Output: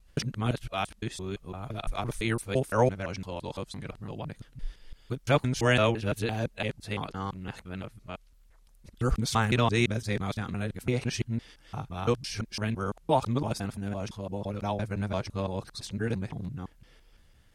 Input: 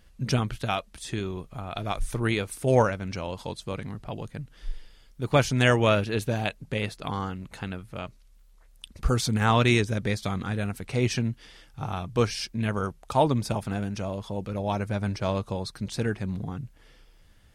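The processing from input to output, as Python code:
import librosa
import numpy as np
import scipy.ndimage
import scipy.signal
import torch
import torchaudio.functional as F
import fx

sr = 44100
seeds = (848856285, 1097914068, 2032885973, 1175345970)

y = fx.local_reverse(x, sr, ms=170.0)
y = y * 10.0 ** (-3.0 / 20.0)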